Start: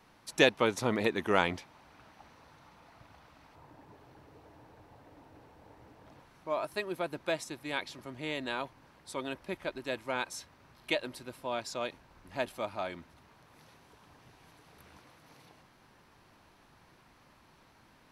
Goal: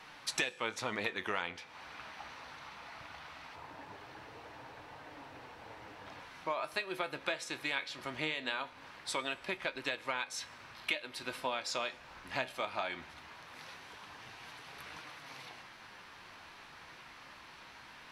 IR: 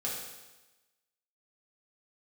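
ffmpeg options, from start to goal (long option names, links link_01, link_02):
-filter_complex "[0:a]equalizer=frequency=2500:width=0.3:gain=14.5,acompressor=threshold=-31dB:ratio=10,flanger=delay=6.3:depth=9.3:regen=66:speed=0.2:shape=triangular,asplit=2[link_01][link_02];[1:a]atrim=start_sample=2205[link_03];[link_02][link_03]afir=irnorm=-1:irlink=0,volume=-20dB[link_04];[link_01][link_04]amix=inputs=2:normalize=0,volume=2.5dB"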